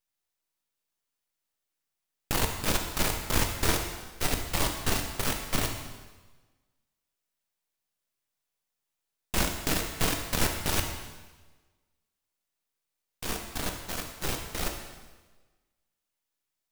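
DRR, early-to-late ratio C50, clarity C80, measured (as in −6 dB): 3.0 dB, 5.5 dB, 8.0 dB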